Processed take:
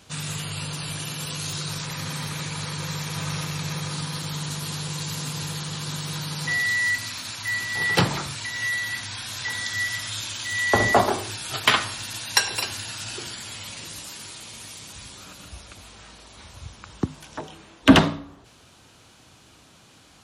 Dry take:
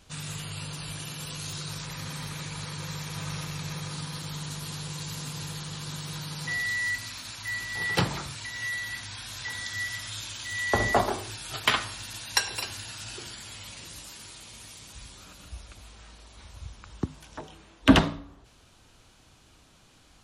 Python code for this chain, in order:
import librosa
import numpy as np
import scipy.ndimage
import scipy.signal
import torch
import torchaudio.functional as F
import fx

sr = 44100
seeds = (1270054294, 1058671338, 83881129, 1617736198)

p1 = scipy.signal.sosfilt(scipy.signal.butter(2, 91.0, 'highpass', fs=sr, output='sos'), x)
p2 = 10.0 ** (-15.5 / 20.0) * np.tanh(p1 / 10.0 ** (-15.5 / 20.0))
p3 = p1 + (p2 * 10.0 ** (-3.0 / 20.0))
y = p3 * 10.0 ** (1.5 / 20.0)